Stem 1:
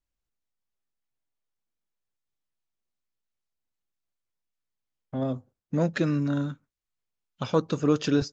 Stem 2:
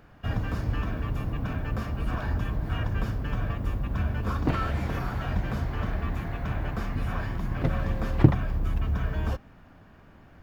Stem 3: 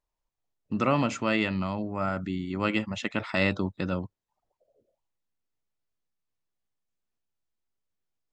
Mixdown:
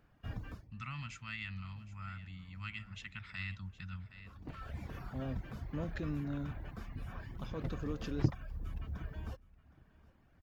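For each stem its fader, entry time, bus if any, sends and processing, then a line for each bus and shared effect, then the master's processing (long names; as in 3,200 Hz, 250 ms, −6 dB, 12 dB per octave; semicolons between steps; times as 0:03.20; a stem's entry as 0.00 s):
−11.5 dB, 0.00 s, bus A, no send, no echo send, high-shelf EQ 5,200 Hz −11.5 dB
−12.5 dB, 0.00 s, no bus, no send, echo send −22.5 dB, reverb reduction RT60 0.72 s; automatic ducking −21 dB, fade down 0.20 s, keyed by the third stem
−6.0 dB, 0.00 s, bus A, no send, echo send −16 dB, Chebyshev band-stop filter 100–1,900 Hz, order 2; high-shelf EQ 2,300 Hz −9 dB
bus A: 0.0 dB, brickwall limiter −29.5 dBFS, peak gain reduction 7.5 dB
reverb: not used
echo: repeating echo 766 ms, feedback 18%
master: parametric band 760 Hz −3 dB 2.5 octaves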